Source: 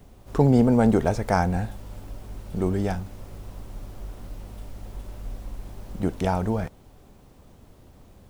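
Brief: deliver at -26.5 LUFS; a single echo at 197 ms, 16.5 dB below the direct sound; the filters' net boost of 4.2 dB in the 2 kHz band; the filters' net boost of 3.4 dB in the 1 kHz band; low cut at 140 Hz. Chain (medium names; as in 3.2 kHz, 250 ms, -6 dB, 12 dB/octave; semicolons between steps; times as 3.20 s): high-pass 140 Hz; peaking EQ 1 kHz +4 dB; peaking EQ 2 kHz +4 dB; delay 197 ms -16.5 dB; trim -3 dB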